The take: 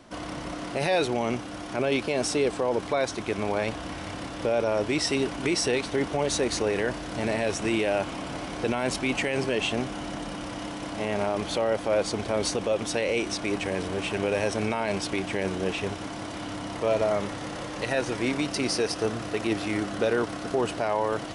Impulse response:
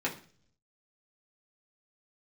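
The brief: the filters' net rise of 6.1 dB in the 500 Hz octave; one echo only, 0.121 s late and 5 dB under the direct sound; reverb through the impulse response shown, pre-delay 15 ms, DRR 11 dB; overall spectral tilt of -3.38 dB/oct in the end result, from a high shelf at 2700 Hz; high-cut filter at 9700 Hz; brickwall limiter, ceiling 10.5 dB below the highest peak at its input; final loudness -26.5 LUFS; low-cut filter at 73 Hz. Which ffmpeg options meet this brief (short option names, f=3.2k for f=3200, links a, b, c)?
-filter_complex "[0:a]highpass=73,lowpass=9.7k,equalizer=f=500:t=o:g=7,highshelf=f=2.7k:g=8,alimiter=limit=-19.5dB:level=0:latency=1,aecho=1:1:121:0.562,asplit=2[a][b];[1:a]atrim=start_sample=2205,adelay=15[c];[b][c]afir=irnorm=-1:irlink=0,volume=-18dB[d];[a][d]amix=inputs=2:normalize=0,volume=1dB"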